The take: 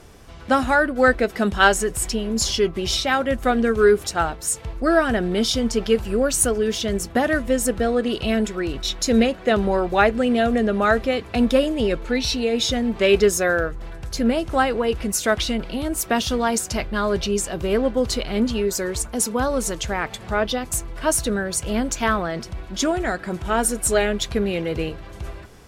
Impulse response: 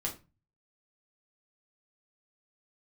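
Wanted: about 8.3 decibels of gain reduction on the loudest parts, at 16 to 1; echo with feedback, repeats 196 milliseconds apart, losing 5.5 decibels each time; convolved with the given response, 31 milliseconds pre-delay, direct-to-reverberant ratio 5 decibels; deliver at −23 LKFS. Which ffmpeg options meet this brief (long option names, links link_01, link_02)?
-filter_complex "[0:a]acompressor=threshold=-19dB:ratio=16,aecho=1:1:196|392|588|784|980|1176|1372:0.531|0.281|0.149|0.079|0.0419|0.0222|0.0118,asplit=2[link_01][link_02];[1:a]atrim=start_sample=2205,adelay=31[link_03];[link_02][link_03]afir=irnorm=-1:irlink=0,volume=-7.5dB[link_04];[link_01][link_04]amix=inputs=2:normalize=0,volume=-1dB"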